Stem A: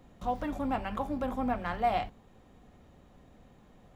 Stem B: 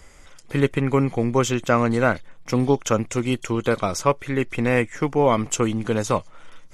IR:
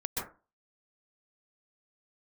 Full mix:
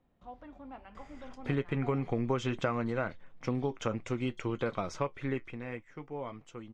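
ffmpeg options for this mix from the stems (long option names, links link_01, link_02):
-filter_complex "[0:a]bandreject=frequency=50:width_type=h:width=6,bandreject=frequency=100:width_type=h:width=6,bandreject=frequency=150:width_type=h:width=6,bandreject=frequency=200:width_type=h:width=6,volume=-15.5dB[link_01];[1:a]flanger=delay=5.5:depth=3.6:regen=-65:speed=0.53:shape=triangular,dynaudnorm=framelen=270:gausssize=11:maxgain=11.5dB,adelay=950,volume=-0.5dB,afade=type=out:start_time=2.51:duration=0.43:silence=0.281838,afade=type=out:start_time=5.3:duration=0.27:silence=0.251189[link_02];[link_01][link_02]amix=inputs=2:normalize=0,lowpass=3700,acompressor=threshold=-28dB:ratio=6"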